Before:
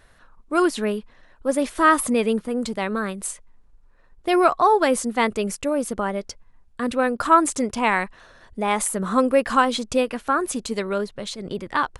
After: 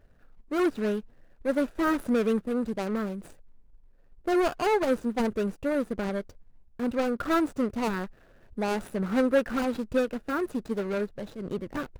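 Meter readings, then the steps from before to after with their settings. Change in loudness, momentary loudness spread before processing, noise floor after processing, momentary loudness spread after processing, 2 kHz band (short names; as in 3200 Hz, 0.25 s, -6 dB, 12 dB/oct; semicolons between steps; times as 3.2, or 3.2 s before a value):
-6.5 dB, 13 LU, -58 dBFS, 10 LU, -9.0 dB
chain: median filter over 41 samples; dynamic EQ 1400 Hz, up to +5 dB, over -45 dBFS, Q 2.7; in parallel at -9 dB: hard clip -24 dBFS, distortion -8 dB; on the sum: gain -4.5 dB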